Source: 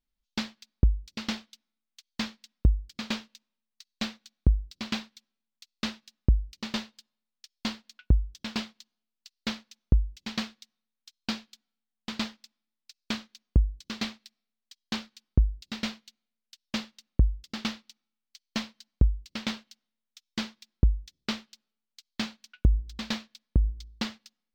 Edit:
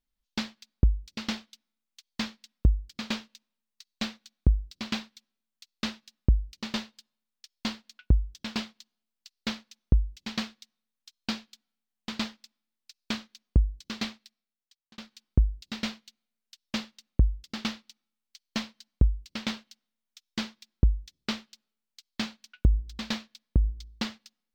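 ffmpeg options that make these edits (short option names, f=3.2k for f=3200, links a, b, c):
-filter_complex "[0:a]asplit=2[a][b];[a]atrim=end=14.98,asetpts=PTS-STARTPTS,afade=t=out:st=13.99:d=0.99[c];[b]atrim=start=14.98,asetpts=PTS-STARTPTS,afade=t=in:d=0.004:c=hsin[d];[c][d]concat=n=2:v=0:a=1"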